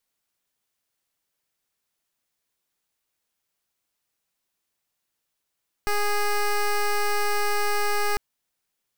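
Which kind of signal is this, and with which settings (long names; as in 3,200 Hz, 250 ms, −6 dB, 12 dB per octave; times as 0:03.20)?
pulse wave 413 Hz, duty 12% −22.5 dBFS 2.30 s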